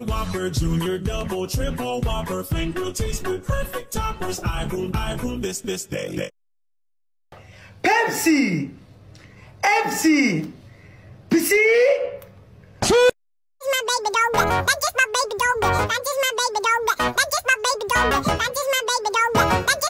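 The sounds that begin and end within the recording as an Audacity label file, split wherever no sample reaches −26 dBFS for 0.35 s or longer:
7.840000	8.660000	sound
9.630000	10.460000	sound
11.310000	12.150000	sound
12.820000	13.100000	sound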